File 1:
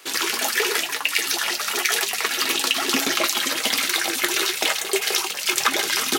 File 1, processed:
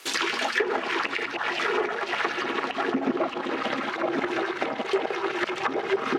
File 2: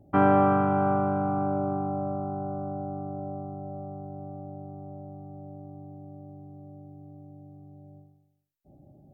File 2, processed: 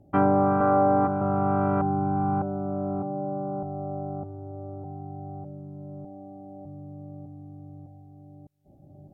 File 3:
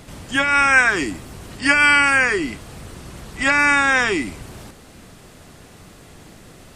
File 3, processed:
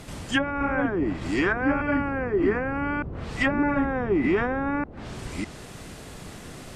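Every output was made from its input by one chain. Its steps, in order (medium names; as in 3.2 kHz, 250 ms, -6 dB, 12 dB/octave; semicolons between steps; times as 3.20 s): chunks repeated in reverse 605 ms, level 0 dB; low-pass that closes with the level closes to 560 Hz, closed at -14 dBFS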